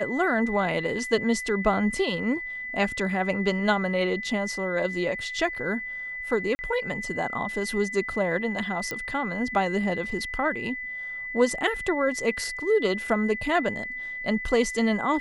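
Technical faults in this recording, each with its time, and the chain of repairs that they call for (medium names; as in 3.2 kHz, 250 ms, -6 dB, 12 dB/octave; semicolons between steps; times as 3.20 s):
whine 2 kHz -32 dBFS
6.55–6.59 s: dropout 40 ms
8.91 s: pop -16 dBFS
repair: de-click; band-stop 2 kHz, Q 30; interpolate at 6.55 s, 40 ms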